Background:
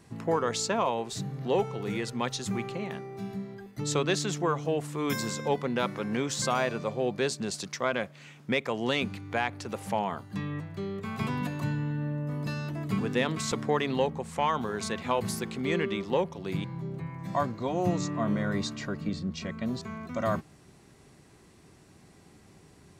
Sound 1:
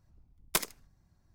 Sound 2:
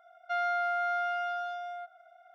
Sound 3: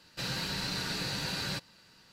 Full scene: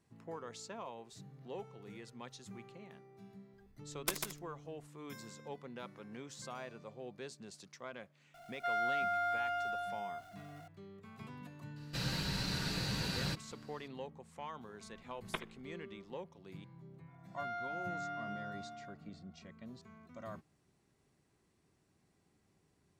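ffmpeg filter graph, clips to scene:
-filter_complex "[1:a]asplit=2[a][b];[2:a]asplit=2[c][d];[0:a]volume=-18.5dB[e];[a]aecho=1:1:145:0.562[f];[c]aeval=exprs='val(0)+0.5*0.00282*sgn(val(0))':c=same[g];[3:a]lowshelf=f=170:g=9.5[h];[b]aresample=8000,aresample=44100[i];[f]atrim=end=1.34,asetpts=PTS-STARTPTS,volume=-7.5dB,afade=t=in:d=0.004:c=hsin,afade=t=out:st=1.336:d=0.004:c=hsin,adelay=155673S[j];[g]atrim=end=2.34,asetpts=PTS-STARTPTS,volume=-4.5dB,afade=t=in:d=0.004:c=hsin,afade=t=out:st=2.336:d=0.004:c=hsin,adelay=367794S[k];[h]atrim=end=2.12,asetpts=PTS-STARTPTS,volume=-4.5dB,afade=t=in:d=0.004:c=hsin,afade=t=out:st=2.116:d=0.004:c=hsin,adelay=11760[l];[i]atrim=end=1.34,asetpts=PTS-STARTPTS,volume=-7.5dB,afade=t=in:d=0.004:c=hsin,afade=t=out:st=1.336:d=0.004:c=hsin,adelay=14790[m];[d]atrim=end=2.34,asetpts=PTS-STARTPTS,volume=-11.5dB,afade=t=in:d=0.004:c=hsin,afade=t=out:st=2.336:d=0.004:c=hsin,adelay=17080[n];[e][j][k][l][m][n]amix=inputs=6:normalize=0"

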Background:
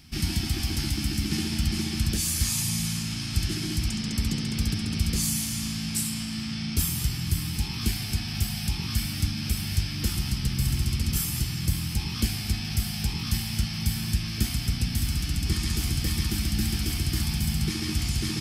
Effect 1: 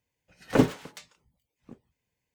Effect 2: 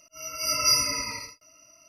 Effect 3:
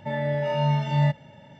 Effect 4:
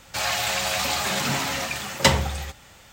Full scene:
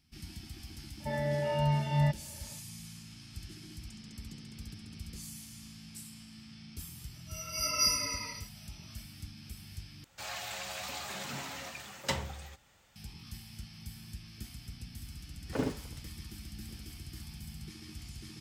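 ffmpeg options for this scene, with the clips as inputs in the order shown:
-filter_complex "[0:a]volume=-19dB[a];[1:a]aecho=1:1:73:0.668[b];[a]asplit=2[c][d];[c]atrim=end=10.044[e];[4:a]atrim=end=2.92,asetpts=PTS-STARTPTS,volume=-15.5dB[f];[d]atrim=start=12.956[g];[3:a]atrim=end=1.59,asetpts=PTS-STARTPTS,volume=-6dB,afade=t=in:d=0.004:c=hsin,afade=t=out:st=1.586:d=0.004:c=hsin,adelay=1000[h];[2:a]atrim=end=1.88,asetpts=PTS-STARTPTS,volume=-6.5dB,afade=t=in:d=0.004:c=hsin,afade=t=out:st=1.876:d=0.004:c=hsin,adelay=314874S[i];[b]atrim=end=2.34,asetpts=PTS-STARTPTS,volume=-13dB,afade=t=in:d=0.004:c=hsin,afade=t=out:st=2.336:d=0.004:c=hsin,adelay=15000[j];[e][f]acrossfade=d=0.004:c1=hsin:c2=hsin[k];[k][g]acrossfade=d=0.004:c1=hsin:c2=hsin[l];[l][h][i][j]amix=inputs=4:normalize=0"

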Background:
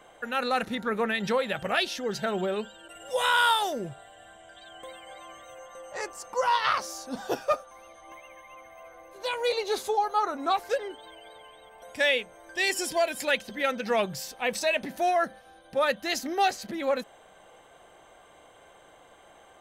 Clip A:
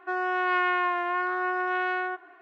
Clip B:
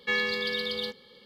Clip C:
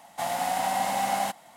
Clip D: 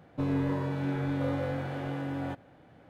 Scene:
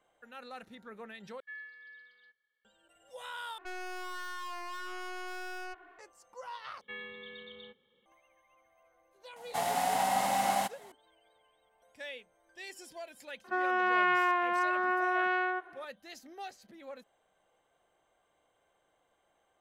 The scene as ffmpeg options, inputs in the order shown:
-filter_complex "[2:a]asplit=2[a][b];[1:a]asplit=2[c][d];[0:a]volume=-19.5dB[e];[a]bandpass=f=1.7k:t=q:w=8.9:csg=0[f];[c]aeval=exprs='(tanh(79.4*val(0)+0.6)-tanh(0.6))/79.4':c=same[g];[b]aresample=8000,aresample=44100[h];[e]asplit=4[i][j][k][l];[i]atrim=end=1.404[m];[f]atrim=end=1.25,asetpts=PTS-STARTPTS,volume=-14.5dB[n];[j]atrim=start=2.646:end=3.584[o];[g]atrim=end=2.41,asetpts=PTS-STARTPTS,volume=-2dB[p];[k]atrim=start=5.986:end=6.814[q];[h]atrim=end=1.25,asetpts=PTS-STARTPTS,volume=-16.5dB[r];[l]atrim=start=8.056[s];[3:a]atrim=end=1.56,asetpts=PTS-STARTPTS,volume=-2.5dB,afade=t=in:d=0.004:c=hsin,afade=t=out:st=1.556:d=0.004:c=hsin,adelay=9360[t];[d]atrim=end=2.41,asetpts=PTS-STARTPTS,volume=-2dB,afade=t=in:d=0.004:c=hsin,afade=t=out:st=2.406:d=0.004:c=hsin,adelay=13440[u];[m][n]acrossfade=d=0.004:c1=hsin:c2=hsin[v];[v][o]acrossfade=d=0.004:c1=hsin:c2=hsin[w];[w][p]acrossfade=d=0.004:c1=hsin:c2=hsin[x];[x][q]acrossfade=d=0.004:c1=hsin:c2=hsin[y];[y][r]acrossfade=d=0.004:c1=hsin:c2=hsin[z];[z][s]acrossfade=d=0.004:c1=hsin:c2=hsin[aa];[aa][t][u]amix=inputs=3:normalize=0"

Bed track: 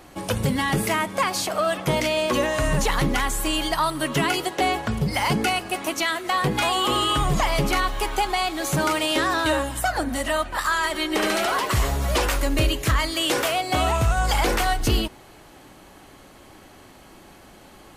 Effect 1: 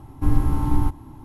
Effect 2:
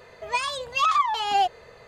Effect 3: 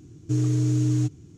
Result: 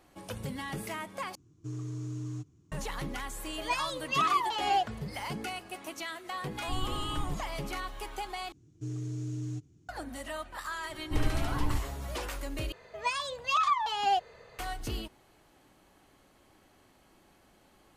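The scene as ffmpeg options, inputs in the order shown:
-filter_complex "[3:a]asplit=2[a][b];[2:a]asplit=2[c][d];[1:a]asplit=2[e][f];[0:a]volume=-15dB[g];[a]equalizer=f=1.1k:t=o:w=0.49:g=10.5[h];[g]asplit=4[i][j][k][l];[i]atrim=end=1.354[m];[h]atrim=end=1.37,asetpts=PTS-STARTPTS,volume=-15.5dB[n];[j]atrim=start=2.716:end=8.524[o];[b]atrim=end=1.37,asetpts=PTS-STARTPTS,volume=-14dB[p];[k]atrim=start=9.886:end=12.724[q];[d]atrim=end=1.87,asetpts=PTS-STARTPTS,volume=-5.5dB[r];[l]atrim=start=14.586[s];[c]atrim=end=1.87,asetpts=PTS-STARTPTS,volume=-6dB,afade=t=in:d=0.004:c=hsin,afade=t=out:st=1.866:d=0.004:c=hsin,adelay=3360[t];[e]atrim=end=1.24,asetpts=PTS-STARTPTS,volume=-17dB,afade=t=in:d=0.004:c=hsin,afade=t=out:st=1.236:d=0.004:c=hsin,adelay=6460[u];[f]atrim=end=1.24,asetpts=PTS-STARTPTS,volume=-11dB,afade=t=in:d=0.004:c=hsin,afade=t=out:st=1.236:d=0.004:c=hsin,adelay=10890[v];[m][n]acrossfade=d=0.004:c1=hsin:c2=hsin[w];[w][o]acrossfade=d=0.004:c1=hsin:c2=hsin[x];[x][p]acrossfade=d=0.004:c1=hsin:c2=hsin[y];[y][q]acrossfade=d=0.004:c1=hsin:c2=hsin[z];[z][r]acrossfade=d=0.004:c1=hsin:c2=hsin[aa];[aa][s]acrossfade=d=0.004:c1=hsin:c2=hsin[ab];[ab][t][u][v]amix=inputs=4:normalize=0"

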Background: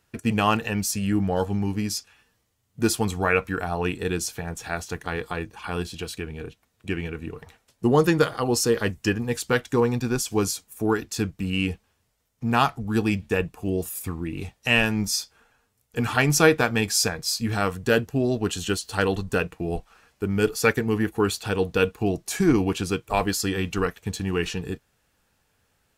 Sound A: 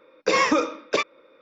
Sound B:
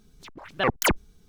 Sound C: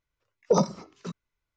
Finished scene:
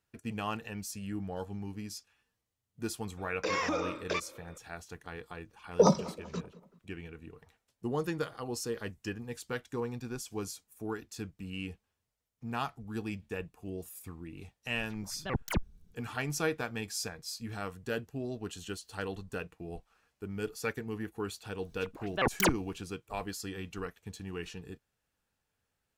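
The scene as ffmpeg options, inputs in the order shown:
-filter_complex "[2:a]asplit=2[a][b];[0:a]volume=-14.5dB[c];[1:a]acompressor=threshold=-28dB:ratio=4:attack=0.29:release=130:knee=1:detection=peak[d];[3:a]asplit=2[e][f];[f]adelay=191,lowpass=f=2.2k:p=1,volume=-19dB,asplit=2[g][h];[h]adelay=191,lowpass=f=2.2k:p=1,volume=0.49,asplit=2[i][j];[j]adelay=191,lowpass=f=2.2k:p=1,volume=0.49,asplit=2[k][l];[l]adelay=191,lowpass=f=2.2k:p=1,volume=0.49[m];[e][g][i][k][m]amix=inputs=5:normalize=0[n];[a]bass=f=250:g=12,treble=f=4k:g=-2[o];[d]atrim=end=1.41,asetpts=PTS-STARTPTS,afade=t=in:d=0.004:c=hsin,afade=t=out:st=1.406:d=0.004:c=hsin,adelay=139797S[p];[n]atrim=end=1.56,asetpts=PTS-STARTPTS,volume=-1dB,afade=t=in:d=0.004:c=hsin,afade=t=out:st=1.556:d=0.004:c=hsin,adelay=233289S[q];[o]atrim=end=1.28,asetpts=PTS-STARTPTS,volume=-14dB,afade=t=in:d=0.004:c=hsin,afade=t=out:st=1.276:d=0.004:c=hsin,adelay=14660[r];[b]atrim=end=1.28,asetpts=PTS-STARTPTS,volume=-5.5dB,afade=t=in:d=0.004:c=hsin,afade=t=out:st=1.276:d=0.004:c=hsin,adelay=21580[s];[c][p][q][r][s]amix=inputs=5:normalize=0"

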